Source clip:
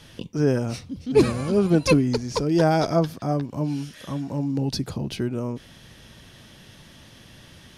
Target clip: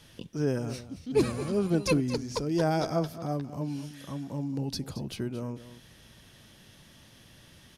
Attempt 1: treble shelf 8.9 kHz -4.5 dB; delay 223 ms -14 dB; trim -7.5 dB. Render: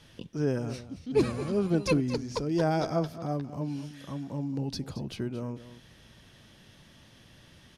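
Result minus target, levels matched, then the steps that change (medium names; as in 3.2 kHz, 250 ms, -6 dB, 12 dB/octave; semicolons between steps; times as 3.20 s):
8 kHz band -4.0 dB
change: treble shelf 8.9 kHz +7 dB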